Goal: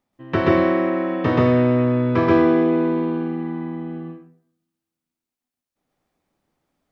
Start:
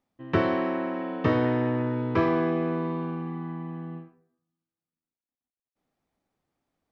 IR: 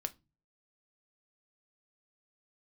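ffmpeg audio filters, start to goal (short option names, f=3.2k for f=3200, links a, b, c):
-filter_complex "[0:a]bandreject=f=88.31:t=h:w=4,bandreject=f=176.62:t=h:w=4,bandreject=f=264.93:t=h:w=4,bandreject=f=353.24:t=h:w=4,bandreject=f=441.55:t=h:w=4,bandreject=f=529.86:t=h:w=4,bandreject=f=618.17:t=h:w=4,bandreject=f=706.48:t=h:w=4,bandreject=f=794.79:t=h:w=4,bandreject=f=883.1:t=h:w=4,asplit=2[a][b];[1:a]atrim=start_sample=2205,adelay=130[c];[b][c]afir=irnorm=-1:irlink=0,volume=2dB[d];[a][d]amix=inputs=2:normalize=0,volume=3dB"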